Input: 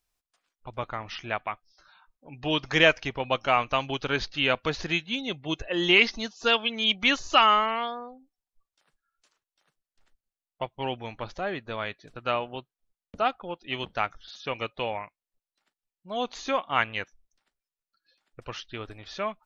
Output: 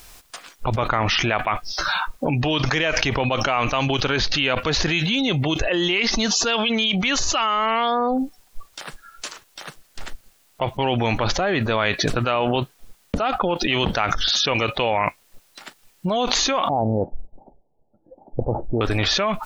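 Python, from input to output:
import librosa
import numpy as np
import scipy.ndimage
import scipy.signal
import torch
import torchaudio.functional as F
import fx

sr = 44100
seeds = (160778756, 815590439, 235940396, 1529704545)

y = fx.cheby1_lowpass(x, sr, hz=850.0, order=6, at=(16.69, 18.81))
y = fx.env_flatten(y, sr, amount_pct=100)
y = y * 10.0 ** (-5.0 / 20.0)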